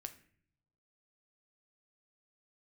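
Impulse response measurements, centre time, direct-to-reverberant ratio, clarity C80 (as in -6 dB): 7 ms, 7.5 dB, 17.5 dB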